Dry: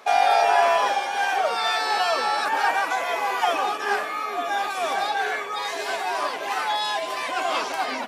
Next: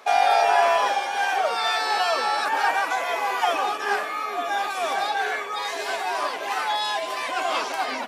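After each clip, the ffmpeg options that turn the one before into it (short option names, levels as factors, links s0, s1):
-af "highpass=f=180:p=1"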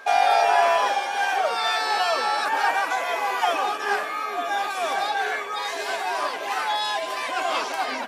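-af "aeval=exprs='val(0)+0.00708*sin(2*PI*1600*n/s)':c=same"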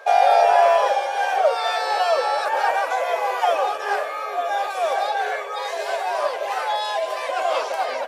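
-af "highpass=f=540:t=q:w=4.9,volume=0.75"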